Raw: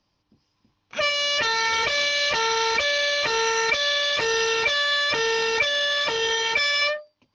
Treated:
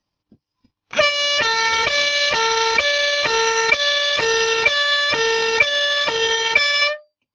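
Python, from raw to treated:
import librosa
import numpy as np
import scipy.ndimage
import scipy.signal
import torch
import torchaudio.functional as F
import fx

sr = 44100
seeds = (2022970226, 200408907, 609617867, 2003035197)

y = fx.transient(x, sr, attack_db=6, sustain_db=-9)
y = fx.noise_reduce_blind(y, sr, reduce_db=11)
y = F.gain(torch.from_numpy(y), 4.5).numpy()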